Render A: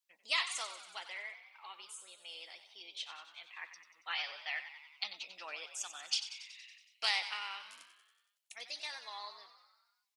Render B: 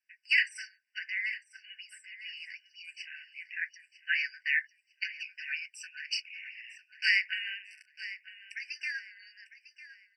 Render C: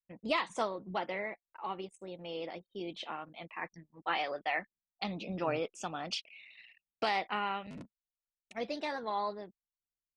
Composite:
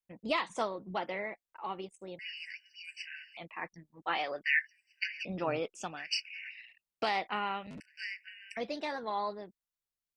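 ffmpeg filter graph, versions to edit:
-filter_complex "[1:a]asplit=4[a][b][c][d];[2:a]asplit=5[e][f][g][h][i];[e]atrim=end=2.192[j];[a]atrim=start=2.188:end=3.372[k];[f]atrim=start=3.368:end=4.442[l];[b]atrim=start=4.438:end=5.252[m];[g]atrim=start=5.248:end=6.08[n];[c]atrim=start=5.84:end=6.71[o];[h]atrim=start=6.47:end=7.802[p];[d]atrim=start=7.798:end=8.572[q];[i]atrim=start=8.568[r];[j][k]acrossfade=d=0.004:c1=hsin:c2=hsin[s];[s][l]acrossfade=d=0.004:c1=hsin:c2=hsin[t];[t][m]acrossfade=d=0.004:c1=hsin:c2=hsin[u];[u][n]acrossfade=d=0.004:c1=hsin:c2=hsin[v];[v][o]acrossfade=d=0.24:c1=tri:c2=tri[w];[w][p]acrossfade=d=0.24:c1=tri:c2=tri[x];[x][q]acrossfade=d=0.004:c1=hsin:c2=hsin[y];[y][r]acrossfade=d=0.004:c1=hsin:c2=hsin"

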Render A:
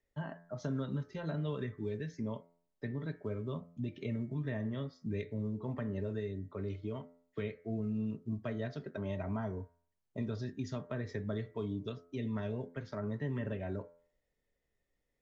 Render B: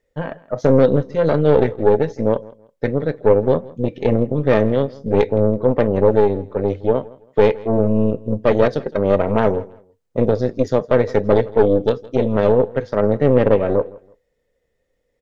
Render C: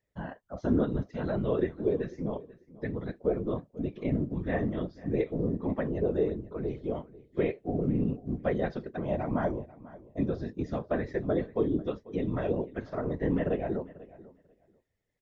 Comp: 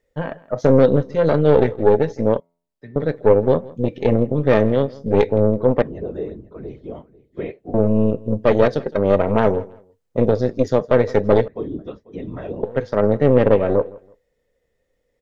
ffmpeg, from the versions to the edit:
-filter_complex "[2:a]asplit=2[a][b];[1:a]asplit=4[c][d][e][f];[c]atrim=end=2.402[g];[0:a]atrim=start=2.398:end=2.962[h];[d]atrim=start=2.958:end=5.822[i];[a]atrim=start=5.818:end=7.742[j];[e]atrim=start=7.738:end=11.482[k];[b]atrim=start=11.478:end=12.632[l];[f]atrim=start=12.628[m];[g][h]acrossfade=d=0.004:c1=hsin:c2=hsin[n];[n][i]acrossfade=d=0.004:c1=hsin:c2=hsin[o];[o][j]acrossfade=d=0.004:c1=hsin:c2=hsin[p];[p][k]acrossfade=d=0.004:c1=hsin:c2=hsin[q];[q][l]acrossfade=d=0.004:c1=hsin:c2=hsin[r];[r][m]acrossfade=d=0.004:c1=hsin:c2=hsin"

